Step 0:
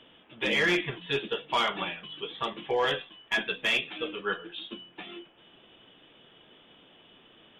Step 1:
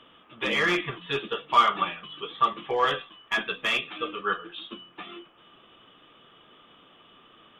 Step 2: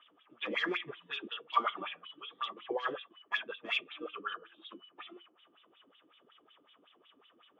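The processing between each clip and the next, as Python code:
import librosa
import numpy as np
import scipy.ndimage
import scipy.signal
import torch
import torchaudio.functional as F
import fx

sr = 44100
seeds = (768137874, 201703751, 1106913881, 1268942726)

y1 = fx.peak_eq(x, sr, hz=1200.0, db=14.5, octaves=0.26)
y2 = fx.wah_lfo(y1, sr, hz=5.4, low_hz=280.0, high_hz=3800.0, q=3.1)
y2 = F.gain(torch.from_numpy(y2), -1.5).numpy()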